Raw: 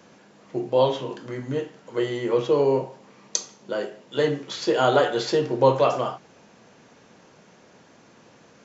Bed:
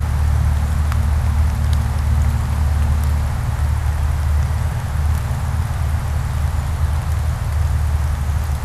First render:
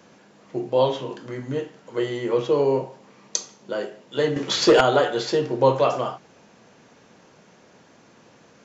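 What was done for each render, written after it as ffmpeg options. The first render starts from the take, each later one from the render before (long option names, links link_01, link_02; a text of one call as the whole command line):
ffmpeg -i in.wav -filter_complex "[0:a]asettb=1/sr,asplit=3[link_01][link_02][link_03];[link_01]atrim=end=4.364[link_04];[link_02]atrim=start=4.36:end=4.81,asetpts=PTS-STARTPTS,afade=type=in:duration=0.004:curve=qsin,afade=type=out:start_time=0.446:duration=0.004:curve=qsin,aeval=exprs='0.376*sin(PI/2*2*val(0)/0.376)':channel_layout=same[link_05];[link_03]atrim=start=4.806[link_06];[link_04][link_05]acrossfade=duration=0.004:curve1=hsin:curve2=qsin[link_07];[link_07][link_06]acrossfade=duration=0.004:curve1=qsin:curve2=hsin" out.wav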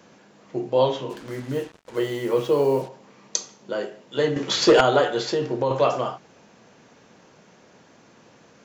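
ffmpeg -i in.wav -filter_complex "[0:a]asplit=3[link_01][link_02][link_03];[link_01]afade=type=out:start_time=1.09:duration=0.02[link_04];[link_02]acrusher=bits=6:mix=0:aa=0.5,afade=type=in:start_time=1.09:duration=0.02,afade=type=out:start_time=2.87:duration=0.02[link_05];[link_03]afade=type=in:start_time=2.87:duration=0.02[link_06];[link_04][link_05][link_06]amix=inputs=3:normalize=0,asettb=1/sr,asplit=3[link_07][link_08][link_09];[link_07]atrim=end=5.224[link_10];[link_08]atrim=start=5.22:end=5.71,asetpts=PTS-STARTPTS,afade=type=in:duration=0.004:curve=qsin,afade=type=out:start_time=0.486:duration=0.004:curve=qsin,acompressor=threshold=-18dB:ratio=6:attack=3.2:release=140:knee=1:detection=peak[link_11];[link_09]atrim=start=5.706[link_12];[link_10][link_11]acrossfade=duration=0.004:curve1=hsin:curve2=qsin[link_13];[link_13][link_12]acrossfade=duration=0.004:curve1=qsin:curve2=hsin" out.wav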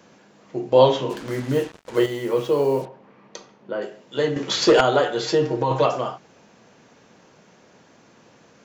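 ffmpeg -i in.wav -filter_complex "[0:a]asettb=1/sr,asplit=3[link_01][link_02][link_03];[link_01]atrim=end=2.854[link_04];[link_02]atrim=start=2.85:end=3.82,asetpts=PTS-STARTPTS,afade=type=in:duration=0.004:curve=qsin,afade=type=out:start_time=0.966:duration=0.004:curve=qsin,lowpass=2300[link_05];[link_03]atrim=start=3.816[link_06];[link_04][link_05]acrossfade=duration=0.004:curve1=hsin:curve2=qsin[link_07];[link_07][link_06]acrossfade=duration=0.004:curve1=qsin:curve2=hsin,asettb=1/sr,asplit=3[link_08][link_09][link_10];[link_08]atrim=end=5.224[link_11];[link_09]atrim=start=5.22:end=5.86,asetpts=PTS-STARTPTS,afade=type=in:duration=0.004:curve=qsin,afade=type=out:start_time=0.636:duration=0.004:curve=qsin,aecho=1:1:6.4:0.9,atrim=end_sample=28224[link_12];[link_10]atrim=start=5.856[link_13];[link_11][link_12]acrossfade=duration=0.004:curve1=hsin:curve2=qsin[link_14];[link_14][link_13]acrossfade=duration=0.004:curve1=qsin:curve2=hsin,asplit=3[link_15][link_16][link_17];[link_15]atrim=end=0.722[link_18];[link_16]atrim=start=0.718:end=2.062,asetpts=PTS-STARTPTS,volume=5.5dB[link_19];[link_17]atrim=start=2.058[link_20];[link_18][link_19]acrossfade=duration=0.004:curve1=hsin:curve2=hsin[link_21];[link_21][link_20]acrossfade=duration=0.004:curve1=hsin:curve2=hsin" out.wav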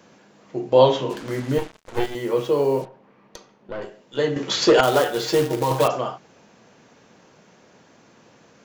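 ffmpeg -i in.wav -filter_complex "[0:a]asettb=1/sr,asplit=3[link_01][link_02][link_03];[link_01]atrim=end=1.584[link_04];[link_02]atrim=start=1.58:end=2.15,asetpts=PTS-STARTPTS,afade=type=in:duration=0.004:curve=qsin,afade=type=out:start_time=0.566:duration=0.004:curve=qsin,aeval=exprs='max(val(0),0)':channel_layout=same[link_05];[link_03]atrim=start=2.146[link_06];[link_04][link_05]acrossfade=duration=0.004:curve1=hsin:curve2=qsin[link_07];[link_07][link_06]acrossfade=duration=0.004:curve1=qsin:curve2=hsin,asettb=1/sr,asplit=3[link_08][link_09][link_10];[link_08]atrim=end=2.844[link_11];[link_09]atrim=start=2.84:end=4.17,asetpts=PTS-STARTPTS,afade=type=in:duration=0.004:curve=qsin,afade=type=out:start_time=1.326:duration=0.004:curve=qsin,aeval=exprs='(tanh(17.8*val(0)+0.65)-tanh(0.65))/17.8':channel_layout=same[link_12];[link_10]atrim=start=4.166[link_13];[link_11][link_12]acrossfade=duration=0.004:curve1=hsin:curve2=qsin[link_14];[link_14][link_13]acrossfade=duration=0.004:curve1=qsin:curve2=hsin,asettb=1/sr,asplit=3[link_15][link_16][link_17];[link_15]atrim=end=4.834[link_18];[link_16]atrim=start=4.83:end=5.88,asetpts=PTS-STARTPTS,afade=type=in:duration=0.004:curve=qsin,afade=type=out:start_time=1.046:duration=0.004:curve=qsin,acrusher=bits=3:mode=log:mix=0:aa=0.000001[link_19];[link_17]atrim=start=5.876[link_20];[link_18][link_19]acrossfade=duration=0.004:curve1=hsin:curve2=qsin[link_21];[link_21][link_20]acrossfade=duration=0.004:curve1=qsin:curve2=hsin" out.wav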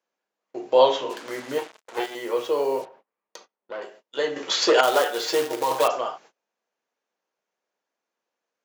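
ffmpeg -i in.wav -af "highpass=480,agate=range=-29dB:threshold=-48dB:ratio=16:detection=peak" out.wav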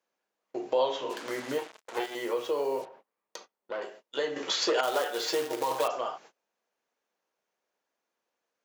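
ffmpeg -i in.wav -af "acompressor=threshold=-31dB:ratio=2" out.wav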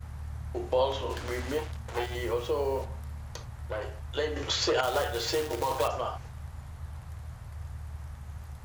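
ffmpeg -i in.wav -i bed.wav -filter_complex "[1:a]volume=-22.5dB[link_01];[0:a][link_01]amix=inputs=2:normalize=0" out.wav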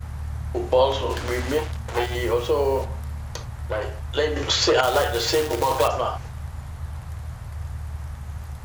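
ffmpeg -i in.wav -af "volume=8dB" out.wav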